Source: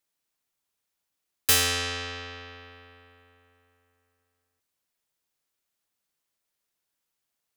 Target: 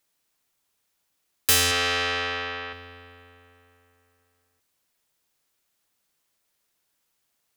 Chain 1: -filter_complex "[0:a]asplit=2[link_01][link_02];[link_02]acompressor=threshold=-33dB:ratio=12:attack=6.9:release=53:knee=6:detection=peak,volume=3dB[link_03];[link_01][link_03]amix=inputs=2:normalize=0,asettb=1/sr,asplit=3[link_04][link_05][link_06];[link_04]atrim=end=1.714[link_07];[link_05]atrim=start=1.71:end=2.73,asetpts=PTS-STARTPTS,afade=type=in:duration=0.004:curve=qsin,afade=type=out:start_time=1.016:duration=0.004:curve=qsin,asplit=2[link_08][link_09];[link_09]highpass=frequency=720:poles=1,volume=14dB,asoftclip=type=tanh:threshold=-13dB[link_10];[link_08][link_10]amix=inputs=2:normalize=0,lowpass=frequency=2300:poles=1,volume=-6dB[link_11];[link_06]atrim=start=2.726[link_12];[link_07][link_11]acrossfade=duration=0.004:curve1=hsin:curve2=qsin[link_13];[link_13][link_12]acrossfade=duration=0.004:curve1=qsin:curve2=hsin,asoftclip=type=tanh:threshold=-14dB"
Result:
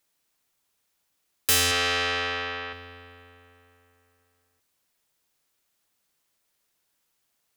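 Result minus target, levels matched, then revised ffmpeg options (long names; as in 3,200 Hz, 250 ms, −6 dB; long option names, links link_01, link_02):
soft clipping: distortion +10 dB
-filter_complex "[0:a]asplit=2[link_01][link_02];[link_02]acompressor=threshold=-33dB:ratio=12:attack=6.9:release=53:knee=6:detection=peak,volume=3dB[link_03];[link_01][link_03]amix=inputs=2:normalize=0,asettb=1/sr,asplit=3[link_04][link_05][link_06];[link_04]atrim=end=1.714[link_07];[link_05]atrim=start=1.71:end=2.73,asetpts=PTS-STARTPTS,afade=type=in:duration=0.004:curve=qsin,afade=type=out:start_time=1.016:duration=0.004:curve=qsin,asplit=2[link_08][link_09];[link_09]highpass=frequency=720:poles=1,volume=14dB,asoftclip=type=tanh:threshold=-13dB[link_10];[link_08][link_10]amix=inputs=2:normalize=0,lowpass=frequency=2300:poles=1,volume=-6dB[link_11];[link_06]atrim=start=2.726[link_12];[link_07][link_11]acrossfade=duration=0.004:curve1=hsin:curve2=qsin[link_13];[link_13][link_12]acrossfade=duration=0.004:curve1=qsin:curve2=hsin,asoftclip=type=tanh:threshold=-7dB"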